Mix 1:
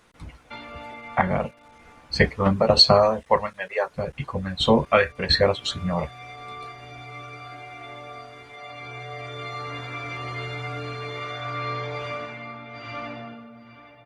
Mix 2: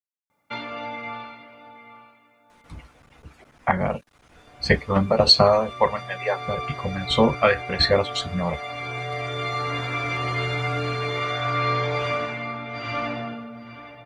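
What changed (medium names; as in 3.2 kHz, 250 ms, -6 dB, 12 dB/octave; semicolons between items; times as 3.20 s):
speech: entry +2.50 s; background +6.5 dB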